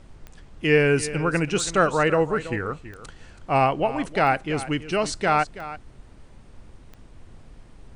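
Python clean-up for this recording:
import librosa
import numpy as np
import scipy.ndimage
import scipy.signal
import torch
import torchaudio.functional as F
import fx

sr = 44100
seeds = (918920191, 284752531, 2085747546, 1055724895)

y = fx.fix_declick_ar(x, sr, threshold=10.0)
y = fx.noise_reduce(y, sr, print_start_s=6.01, print_end_s=6.51, reduce_db=21.0)
y = fx.fix_echo_inverse(y, sr, delay_ms=328, level_db=-14.5)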